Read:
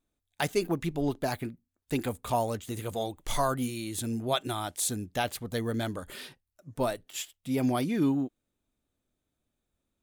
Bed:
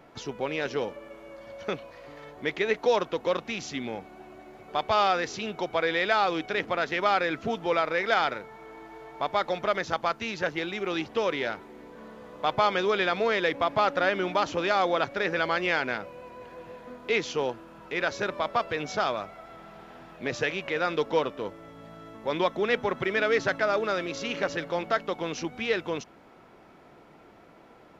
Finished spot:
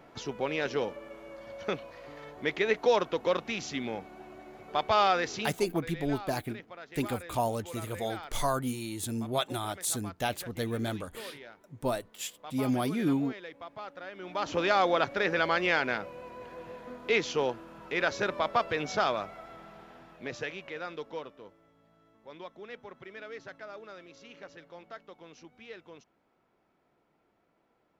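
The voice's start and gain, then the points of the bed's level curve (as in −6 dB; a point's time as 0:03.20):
5.05 s, −1.5 dB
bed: 0:05.42 −1 dB
0:05.71 −18.5 dB
0:14.12 −18.5 dB
0:14.55 −0.5 dB
0:19.38 −0.5 dB
0:21.85 −19 dB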